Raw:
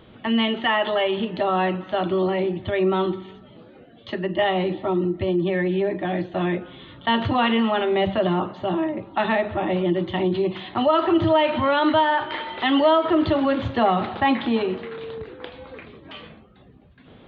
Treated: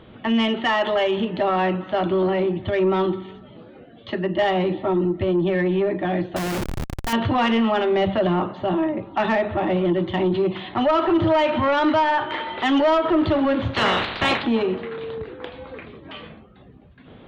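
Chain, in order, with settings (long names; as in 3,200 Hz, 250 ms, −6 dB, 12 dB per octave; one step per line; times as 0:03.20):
0:13.73–0:14.42: ceiling on every frequency bin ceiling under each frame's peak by 29 dB
soft clipping −15.5 dBFS, distortion −16 dB
low-pass filter 3,800 Hz 6 dB per octave
0:06.36–0:07.13: comparator with hysteresis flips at −35.5 dBFS
level +3 dB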